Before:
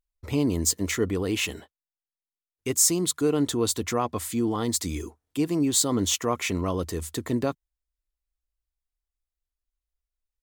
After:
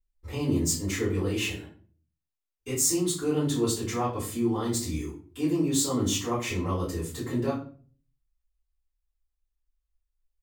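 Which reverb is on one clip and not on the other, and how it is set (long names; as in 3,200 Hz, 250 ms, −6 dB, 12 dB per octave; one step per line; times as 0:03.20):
rectangular room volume 31 cubic metres, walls mixed, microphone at 2.6 metres
level −16 dB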